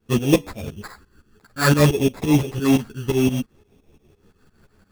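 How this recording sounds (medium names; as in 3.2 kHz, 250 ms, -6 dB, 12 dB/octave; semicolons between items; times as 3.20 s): phasing stages 6, 0.58 Hz, lowest notch 670–1400 Hz; aliases and images of a low sample rate 3 kHz, jitter 0%; tremolo saw up 5.8 Hz, depth 90%; a shimmering, thickened sound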